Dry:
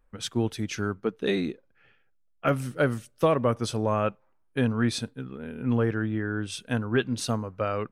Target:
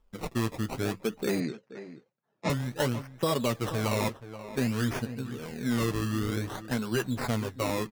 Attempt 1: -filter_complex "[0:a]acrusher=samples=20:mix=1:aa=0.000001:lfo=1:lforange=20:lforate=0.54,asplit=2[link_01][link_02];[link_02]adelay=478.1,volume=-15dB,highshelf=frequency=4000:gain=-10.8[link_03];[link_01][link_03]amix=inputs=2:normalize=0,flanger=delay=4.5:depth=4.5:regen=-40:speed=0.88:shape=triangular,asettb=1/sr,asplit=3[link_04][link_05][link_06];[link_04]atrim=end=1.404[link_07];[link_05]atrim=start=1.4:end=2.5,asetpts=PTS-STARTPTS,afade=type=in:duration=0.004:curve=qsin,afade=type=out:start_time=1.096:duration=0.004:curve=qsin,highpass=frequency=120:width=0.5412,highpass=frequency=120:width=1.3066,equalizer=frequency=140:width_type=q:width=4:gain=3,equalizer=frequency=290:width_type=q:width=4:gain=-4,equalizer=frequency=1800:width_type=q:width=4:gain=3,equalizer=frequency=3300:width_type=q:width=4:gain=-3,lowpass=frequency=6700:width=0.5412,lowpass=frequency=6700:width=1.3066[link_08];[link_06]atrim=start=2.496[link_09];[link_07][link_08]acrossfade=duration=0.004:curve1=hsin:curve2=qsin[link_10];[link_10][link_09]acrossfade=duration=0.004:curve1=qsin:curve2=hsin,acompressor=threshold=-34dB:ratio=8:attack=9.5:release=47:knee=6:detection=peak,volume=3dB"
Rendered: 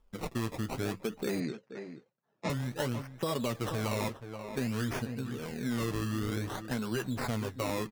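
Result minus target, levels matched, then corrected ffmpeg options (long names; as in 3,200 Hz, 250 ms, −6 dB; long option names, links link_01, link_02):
downward compressor: peak gain reduction +6 dB
-filter_complex "[0:a]acrusher=samples=20:mix=1:aa=0.000001:lfo=1:lforange=20:lforate=0.54,asplit=2[link_01][link_02];[link_02]adelay=478.1,volume=-15dB,highshelf=frequency=4000:gain=-10.8[link_03];[link_01][link_03]amix=inputs=2:normalize=0,flanger=delay=4.5:depth=4.5:regen=-40:speed=0.88:shape=triangular,asettb=1/sr,asplit=3[link_04][link_05][link_06];[link_04]atrim=end=1.404[link_07];[link_05]atrim=start=1.4:end=2.5,asetpts=PTS-STARTPTS,afade=type=in:duration=0.004:curve=qsin,afade=type=out:start_time=1.096:duration=0.004:curve=qsin,highpass=frequency=120:width=0.5412,highpass=frequency=120:width=1.3066,equalizer=frequency=140:width_type=q:width=4:gain=3,equalizer=frequency=290:width_type=q:width=4:gain=-4,equalizer=frequency=1800:width_type=q:width=4:gain=3,equalizer=frequency=3300:width_type=q:width=4:gain=-3,lowpass=frequency=6700:width=0.5412,lowpass=frequency=6700:width=1.3066[link_08];[link_06]atrim=start=2.496[link_09];[link_07][link_08]acrossfade=duration=0.004:curve1=hsin:curve2=qsin[link_10];[link_10][link_09]acrossfade=duration=0.004:curve1=qsin:curve2=hsin,acompressor=threshold=-27dB:ratio=8:attack=9.5:release=47:knee=6:detection=peak,volume=3dB"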